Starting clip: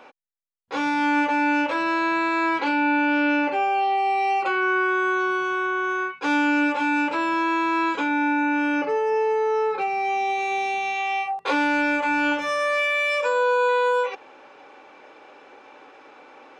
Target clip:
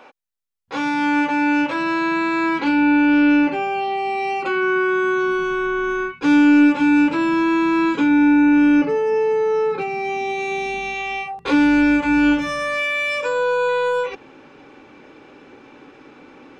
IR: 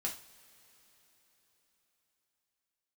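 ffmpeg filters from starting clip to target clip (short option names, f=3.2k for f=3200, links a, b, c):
-af "asubboost=boost=10:cutoff=210,volume=2dB"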